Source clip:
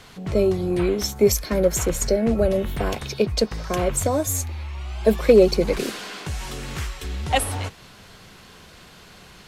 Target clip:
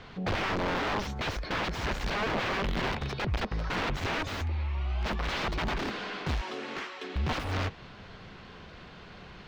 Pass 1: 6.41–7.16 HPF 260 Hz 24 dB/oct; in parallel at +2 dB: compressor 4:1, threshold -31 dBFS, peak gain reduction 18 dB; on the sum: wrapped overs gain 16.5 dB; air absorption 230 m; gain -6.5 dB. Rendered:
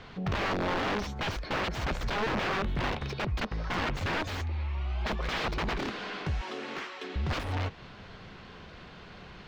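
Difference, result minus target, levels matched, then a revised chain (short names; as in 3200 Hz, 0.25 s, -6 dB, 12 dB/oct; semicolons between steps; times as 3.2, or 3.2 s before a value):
compressor: peak gain reduction +4.5 dB
6.41–7.16 HPF 260 Hz 24 dB/oct; in parallel at +2 dB: compressor 4:1, threshold -25 dBFS, peak gain reduction 13.5 dB; on the sum: wrapped overs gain 16.5 dB; air absorption 230 m; gain -6.5 dB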